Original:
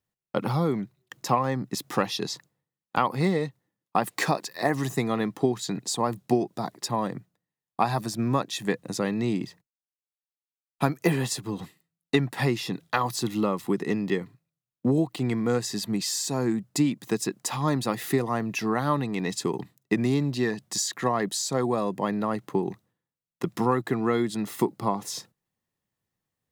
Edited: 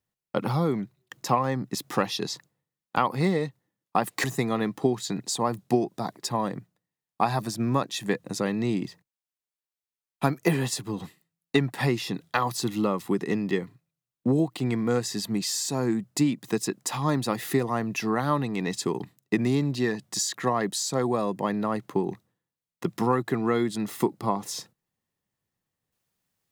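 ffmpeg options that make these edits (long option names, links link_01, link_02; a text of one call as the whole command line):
ffmpeg -i in.wav -filter_complex "[0:a]asplit=2[link_01][link_02];[link_01]atrim=end=4.242[link_03];[link_02]atrim=start=4.828[link_04];[link_03][link_04]acrossfade=duration=0.004:curve1=hsin:curve2=hsin" out.wav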